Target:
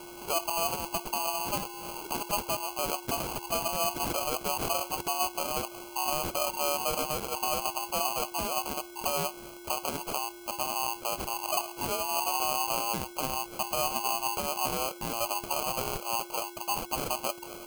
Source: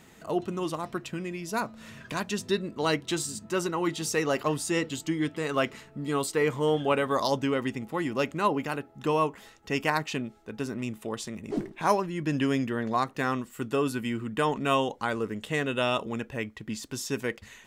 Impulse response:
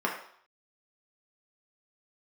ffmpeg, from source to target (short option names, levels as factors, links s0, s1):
-filter_complex "[0:a]afftfilt=real='real(if(between(b,1,1008),(2*floor((b-1)/48)+1)*48-b,b),0)':imag='imag(if(between(b,1,1008),(2*floor((b-1)/48)+1)*48-b,b),0)*if(between(b,1,1008),-1,1)':win_size=2048:overlap=0.75,highpass=600,equalizer=f=2000:t=o:w=0.36:g=-9.5,asplit=2[s0][s1];[s1]acompressor=threshold=0.00891:ratio=6,volume=0.944[s2];[s0][s2]amix=inputs=2:normalize=0,alimiter=limit=0.0794:level=0:latency=1:release=205,aeval=exprs='val(0)+0.00562*sin(2*PI*7700*n/s)':c=same,acrusher=samples=24:mix=1:aa=0.000001,crystalizer=i=1.5:c=0"